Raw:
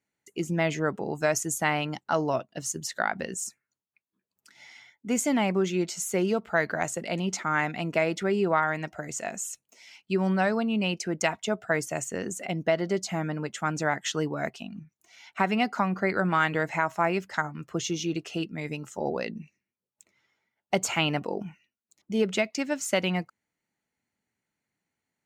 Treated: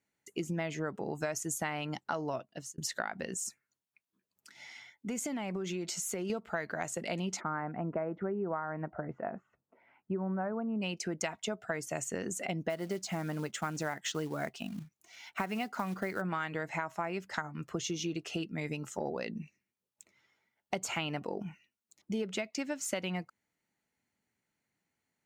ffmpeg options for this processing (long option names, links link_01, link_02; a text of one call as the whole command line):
ffmpeg -i in.wav -filter_complex "[0:a]asettb=1/sr,asplit=3[link_01][link_02][link_03];[link_01]atrim=end=3.304[link_04];[link_02]atrim=start=3.3:end=6.3,asetpts=PTS-STARTPTS,afade=type=in:duration=0.004:curve=qsin,afade=type=out:start_time=2.996:duration=0.004:curve=qsin,acompressor=threshold=-31dB:ratio=6:attack=3.2:release=140:knee=1:detection=peak[link_05];[link_03]atrim=start=6.296[link_06];[link_04][link_05]acrossfade=duration=0.004:curve1=hsin:curve2=qsin[link_07];[link_07][link_06]acrossfade=duration=0.004:curve1=qsin:curve2=hsin,asplit=3[link_08][link_09][link_10];[link_08]afade=type=out:start_time=7.39:duration=0.02[link_11];[link_09]lowpass=frequency=1400:width=0.5412,lowpass=frequency=1400:width=1.3066,afade=type=in:start_time=7.39:duration=0.02,afade=type=out:start_time=10.81:duration=0.02[link_12];[link_10]afade=type=in:start_time=10.81:duration=0.02[link_13];[link_11][link_12][link_13]amix=inputs=3:normalize=0,asplit=3[link_14][link_15][link_16];[link_14]afade=type=out:start_time=12.69:duration=0.02[link_17];[link_15]acrusher=bits=5:mode=log:mix=0:aa=0.000001,afade=type=in:start_time=12.69:duration=0.02,afade=type=out:start_time=16.2:duration=0.02[link_18];[link_16]afade=type=in:start_time=16.2:duration=0.02[link_19];[link_17][link_18][link_19]amix=inputs=3:normalize=0,asplit=2[link_20][link_21];[link_20]atrim=end=2.78,asetpts=PTS-STARTPTS,afade=type=out:start_time=2.33:duration=0.45[link_22];[link_21]atrim=start=2.78,asetpts=PTS-STARTPTS,afade=type=in:duration=0.004:curve=hsin[link_23];[link_22][link_23]concat=n=2:v=0:a=1,acompressor=threshold=-32dB:ratio=6" out.wav